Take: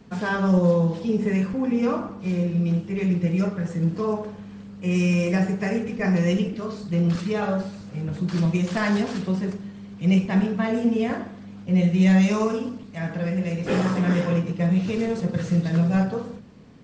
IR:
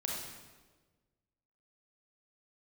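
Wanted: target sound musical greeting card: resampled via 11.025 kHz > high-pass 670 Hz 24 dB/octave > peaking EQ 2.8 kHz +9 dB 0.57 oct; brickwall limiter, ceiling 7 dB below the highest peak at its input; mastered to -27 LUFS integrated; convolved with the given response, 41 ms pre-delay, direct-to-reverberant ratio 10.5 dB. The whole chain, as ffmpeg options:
-filter_complex "[0:a]alimiter=limit=0.158:level=0:latency=1,asplit=2[s0][s1];[1:a]atrim=start_sample=2205,adelay=41[s2];[s1][s2]afir=irnorm=-1:irlink=0,volume=0.211[s3];[s0][s3]amix=inputs=2:normalize=0,aresample=11025,aresample=44100,highpass=f=670:w=0.5412,highpass=f=670:w=1.3066,equalizer=f=2800:t=o:w=0.57:g=9,volume=2"

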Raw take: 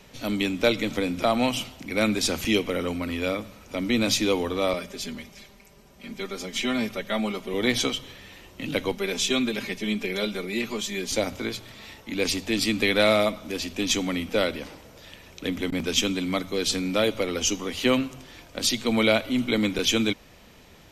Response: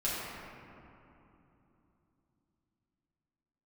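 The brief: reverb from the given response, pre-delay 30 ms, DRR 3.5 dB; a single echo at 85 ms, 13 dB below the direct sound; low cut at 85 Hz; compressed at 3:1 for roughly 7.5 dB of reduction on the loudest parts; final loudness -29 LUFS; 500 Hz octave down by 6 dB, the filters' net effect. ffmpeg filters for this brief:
-filter_complex "[0:a]highpass=85,equalizer=f=500:t=o:g=-7.5,acompressor=threshold=0.0355:ratio=3,aecho=1:1:85:0.224,asplit=2[s0][s1];[1:a]atrim=start_sample=2205,adelay=30[s2];[s1][s2]afir=irnorm=-1:irlink=0,volume=0.282[s3];[s0][s3]amix=inputs=2:normalize=0,volume=1.19"

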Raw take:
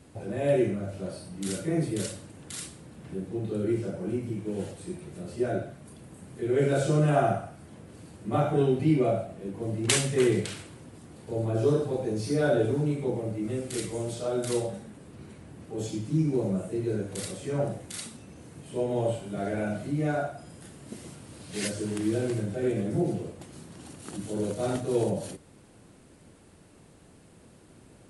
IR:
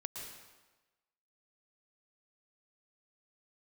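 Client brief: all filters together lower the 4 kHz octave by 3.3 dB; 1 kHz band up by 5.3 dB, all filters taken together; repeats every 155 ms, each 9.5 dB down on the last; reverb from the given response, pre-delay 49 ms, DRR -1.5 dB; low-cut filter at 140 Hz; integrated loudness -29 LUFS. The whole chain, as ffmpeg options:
-filter_complex "[0:a]highpass=140,equalizer=f=1000:t=o:g=9,equalizer=f=4000:t=o:g=-5,aecho=1:1:155|310|465|620:0.335|0.111|0.0365|0.012,asplit=2[s0][s1];[1:a]atrim=start_sample=2205,adelay=49[s2];[s1][s2]afir=irnorm=-1:irlink=0,volume=1.33[s3];[s0][s3]amix=inputs=2:normalize=0,volume=0.596"

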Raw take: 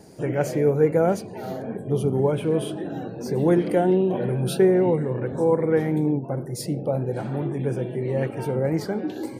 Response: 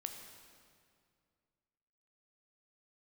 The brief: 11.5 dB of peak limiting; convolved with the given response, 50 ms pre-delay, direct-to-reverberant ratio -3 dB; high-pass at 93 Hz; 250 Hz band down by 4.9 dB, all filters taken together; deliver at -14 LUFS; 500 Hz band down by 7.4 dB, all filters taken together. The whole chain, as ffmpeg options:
-filter_complex "[0:a]highpass=93,equalizer=f=250:t=o:g=-4,equalizer=f=500:t=o:g=-8,alimiter=level_in=1.06:limit=0.0631:level=0:latency=1,volume=0.944,asplit=2[s0][s1];[1:a]atrim=start_sample=2205,adelay=50[s2];[s1][s2]afir=irnorm=-1:irlink=0,volume=1.78[s3];[s0][s3]amix=inputs=2:normalize=0,volume=5.62"

